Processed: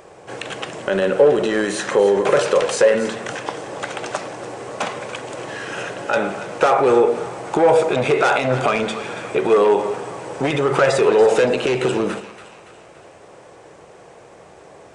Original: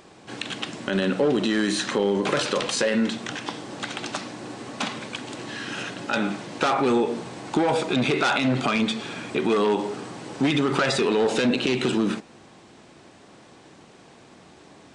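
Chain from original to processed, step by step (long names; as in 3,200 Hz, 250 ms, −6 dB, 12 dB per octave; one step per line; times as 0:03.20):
octave-band graphic EQ 250/500/4,000 Hz −12/+9/−9 dB
echo with a time of its own for lows and highs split 850 Hz, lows 92 ms, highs 284 ms, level −13 dB
level +5 dB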